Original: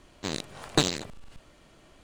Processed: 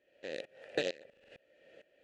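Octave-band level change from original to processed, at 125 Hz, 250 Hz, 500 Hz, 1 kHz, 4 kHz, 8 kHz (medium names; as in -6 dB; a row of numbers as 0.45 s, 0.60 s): -23.0 dB, -15.0 dB, -3.5 dB, -16.5 dB, -14.5 dB, -22.5 dB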